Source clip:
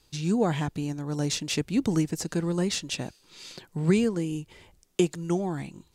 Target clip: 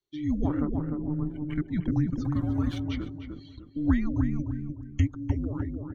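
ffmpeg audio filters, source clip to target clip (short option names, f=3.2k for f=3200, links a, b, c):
-filter_complex "[0:a]aresample=16000,aresample=44100,acrossover=split=3800[a][b];[b]acompressor=threshold=-47dB:ratio=4:attack=1:release=60[c];[a][c]amix=inputs=2:normalize=0,asettb=1/sr,asplit=3[d][e][f];[d]atrim=end=2.244[g];[e]atrim=start=2.24:end=2.81,asetpts=PTS-STARTPTS,afade=t=in:d=0.004:c=qsin,afade=t=out:st=0.566:d=0.004:c=qsin,aeval=exprs='val(0)*gte(abs(val(0)),0.0224)':c=same[h];[f]atrim=start=2.806[i];[g][h]acrossfade=d=0.004:c1=hsin:c2=qsin[j];[j][i]acrossfade=d=0.004:c1=qsin:c2=hsin,highpass=42,afreqshift=-450,asettb=1/sr,asplit=3[k][l][m];[k]atrim=end=0.484[n];[l]atrim=start=0.48:end=1.56,asetpts=PTS-STARTPTS,afade=t=in:d=0.004:c=qsin,afade=t=out:st=1.076:d=0.004:c=qsin,adynamicsmooth=sensitivity=3:basefreq=530[o];[m]atrim=start=1.556[p];[n][o]acrossfade=d=0.004:c1=hsin:c2=qsin[q];[q][p]acrossfade=d=0.004:c1=qsin:c2=hsin,asettb=1/sr,asplit=3[r][s][t];[r]atrim=end=4.394[u];[s]atrim=start=4.39:end=5,asetpts=PTS-STARTPTS,afade=t=in:d=0.004:c=qsin,afade=t=out:st=0.606:d=0.004:c=qsin,bass=f=250:g=13,treble=f=4k:g=7[v];[t]atrim=start=4.996[w];[u][v]acrossfade=d=0.004:c1=hsin:c2=qsin[x];[x][w]acrossfade=d=0.004:c1=qsin:c2=hsin,afftdn=nr=24:nf=-41,equalizer=f=200:t=o:w=0.33:g=-9,equalizer=f=2.5k:t=o:w=0.33:g=-11,equalizer=f=5k:t=o:w=0.33:g=-8,asplit=2[y][z];[z]adelay=301,lowpass=f=1.2k:p=1,volume=-4dB,asplit=2[aa][ab];[ab]adelay=301,lowpass=f=1.2k:p=1,volume=0.36,asplit=2[ac][ad];[ad]adelay=301,lowpass=f=1.2k:p=1,volume=0.36,asplit=2[ae][af];[af]adelay=301,lowpass=f=1.2k:p=1,volume=0.36,asplit=2[ag][ah];[ah]adelay=301,lowpass=f=1.2k:p=1,volume=0.36[ai];[y][aa][ac][ae][ag][ai]amix=inputs=6:normalize=0"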